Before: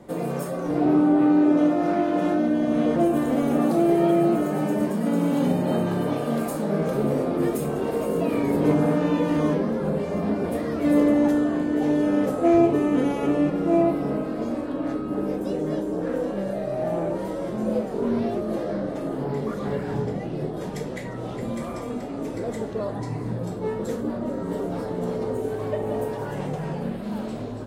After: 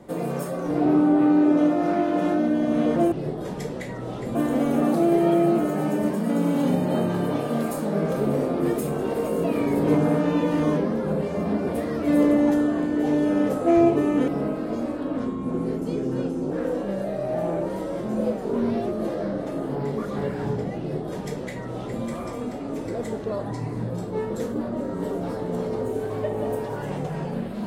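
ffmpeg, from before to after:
ffmpeg -i in.wav -filter_complex "[0:a]asplit=6[link_01][link_02][link_03][link_04][link_05][link_06];[link_01]atrim=end=3.122[link_07];[link_02]atrim=start=20.278:end=21.512[link_08];[link_03]atrim=start=3.118:end=13.052[link_09];[link_04]atrim=start=13.968:end=14.864[link_10];[link_05]atrim=start=14.86:end=16,asetpts=PTS-STARTPTS,asetrate=37485,aresample=44100[link_11];[link_06]atrim=start=15.996[link_12];[link_07][link_08]acrossfade=duration=0.004:curve1=hsin:curve2=hsin[link_13];[link_13][link_09]acrossfade=duration=0.004:curve1=hsin:curve2=hsin[link_14];[link_14][link_10]acrossfade=duration=0.004:curve1=hsin:curve2=hsin[link_15];[link_15][link_11]acrossfade=duration=0.004:curve1=hsin:curve2=hsin[link_16];[link_16][link_12]acrossfade=duration=0.004:curve1=hsin:curve2=hsin" out.wav

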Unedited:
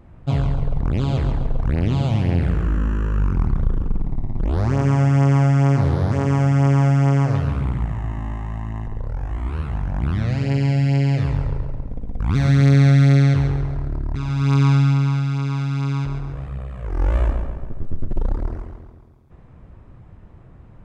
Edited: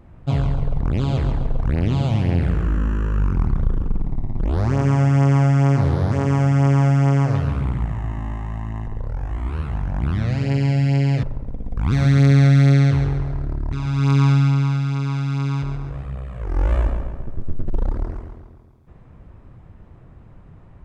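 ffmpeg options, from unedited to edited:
ffmpeg -i in.wav -filter_complex "[0:a]asplit=2[link_01][link_02];[link_01]atrim=end=11.232[link_03];[link_02]atrim=start=11.658[link_04];[link_03][link_04]acrossfade=duration=0.004:curve1=hsin:curve2=hsin" out.wav

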